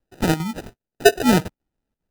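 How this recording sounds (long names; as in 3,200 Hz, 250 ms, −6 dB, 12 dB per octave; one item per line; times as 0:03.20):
phaser sweep stages 4, 3.9 Hz, lowest notch 380–2,200 Hz
aliases and images of a low sample rate 1,100 Hz, jitter 0%
chopped level 2.5 Hz, depth 65%, duty 85%
Ogg Vorbis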